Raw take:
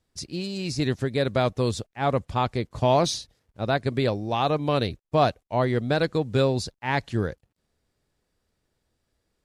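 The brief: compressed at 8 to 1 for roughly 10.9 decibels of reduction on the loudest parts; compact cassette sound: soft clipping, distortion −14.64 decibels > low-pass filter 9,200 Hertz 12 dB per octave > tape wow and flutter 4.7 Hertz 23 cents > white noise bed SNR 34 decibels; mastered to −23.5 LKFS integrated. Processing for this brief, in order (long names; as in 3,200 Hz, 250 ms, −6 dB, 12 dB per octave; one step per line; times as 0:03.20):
downward compressor 8 to 1, threshold −27 dBFS
soft clipping −24.5 dBFS
low-pass filter 9,200 Hz 12 dB per octave
tape wow and flutter 4.7 Hz 23 cents
white noise bed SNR 34 dB
level +11.5 dB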